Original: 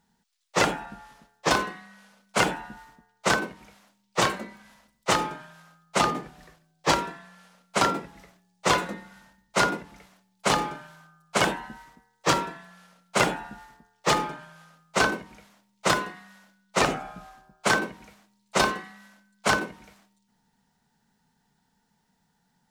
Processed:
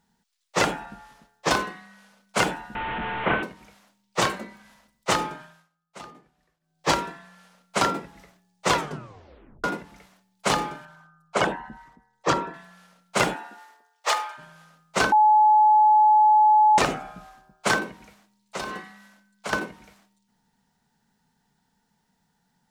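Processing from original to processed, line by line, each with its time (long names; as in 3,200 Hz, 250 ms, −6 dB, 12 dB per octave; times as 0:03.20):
0:02.75–0:03.43: linear delta modulator 16 kbit/s, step −23.5 dBFS
0:05.42–0:06.87: duck −19.5 dB, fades 0.27 s
0:08.72: tape stop 0.92 s
0:10.85–0:12.54: spectral envelope exaggerated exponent 1.5
0:13.33–0:14.37: high-pass filter 230 Hz → 820 Hz 24 dB per octave
0:15.12–0:16.78: beep over 854 Hz −13 dBFS
0:17.82–0:19.53: downward compressor, threshold −28 dBFS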